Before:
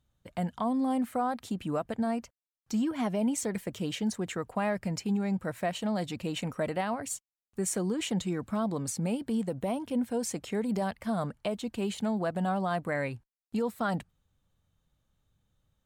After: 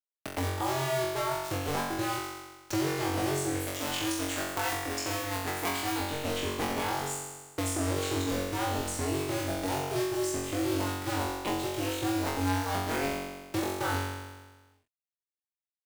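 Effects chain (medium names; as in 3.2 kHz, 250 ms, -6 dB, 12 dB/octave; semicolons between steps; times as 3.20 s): cycle switcher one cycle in 2, inverted; 3.60–6.00 s: tilt EQ +3 dB/octave; bit crusher 7-bit; flutter echo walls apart 3.7 m, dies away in 0.87 s; three bands compressed up and down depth 70%; trim -5.5 dB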